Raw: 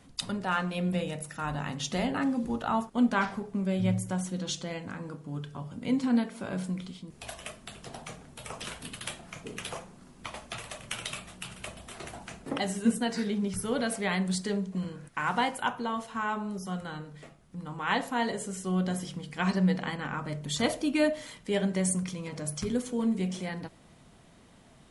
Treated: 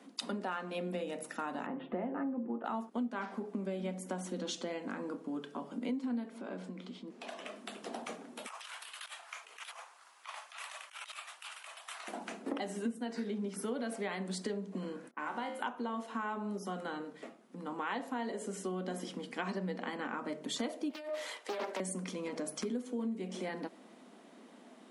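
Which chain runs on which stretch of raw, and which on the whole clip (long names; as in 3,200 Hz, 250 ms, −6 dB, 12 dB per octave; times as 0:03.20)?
0:01.66–0:02.65: Gaussian smoothing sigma 4.6 samples + comb filter 5.8 ms, depth 31%
0:06.38–0:07.56: Bessel low-pass filter 5,600 Hz + downward compressor 2.5 to 1, threshold −41 dBFS
0:08.46–0:12.08: compressor whose output falls as the input rises −42 dBFS, ratio −0.5 + high-pass filter 930 Hz 24 dB per octave
0:15.11–0:15.60: low-pass that shuts in the quiet parts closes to 790 Hz, open at −27.5 dBFS + tuned comb filter 75 Hz, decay 0.48 s, mix 80%
0:20.90–0:21.80: high-pass filter 490 Hz 24 dB per octave + compressor whose output falls as the input rises −36 dBFS + highs frequency-modulated by the lows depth 0.62 ms
whole clip: Butterworth high-pass 220 Hz 48 dB per octave; spectral tilt −2 dB per octave; downward compressor 6 to 1, threshold −36 dBFS; level +1.5 dB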